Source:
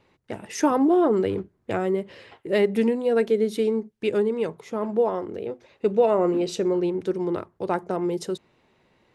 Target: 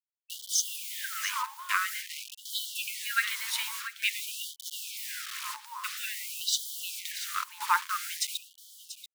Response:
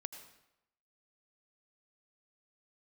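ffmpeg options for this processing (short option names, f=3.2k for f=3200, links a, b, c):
-filter_complex "[0:a]acrusher=bits=6:mix=0:aa=0.000001,bandreject=f=129.4:t=h:w=4,bandreject=f=258.8:t=h:w=4,bandreject=f=388.2:t=h:w=4,bandreject=f=517.6:t=h:w=4,bandreject=f=647:t=h:w=4,bandreject=f=776.4:t=h:w=4,bandreject=f=905.8:t=h:w=4,asplit=2[a][b];[b]aecho=0:1:686:0.237[c];[a][c]amix=inputs=2:normalize=0,afftfilt=real='re*gte(b*sr/1024,850*pow(3000/850,0.5+0.5*sin(2*PI*0.49*pts/sr)))':imag='im*gte(b*sr/1024,850*pow(3000/850,0.5+0.5*sin(2*PI*0.49*pts/sr)))':win_size=1024:overlap=0.75,volume=8dB"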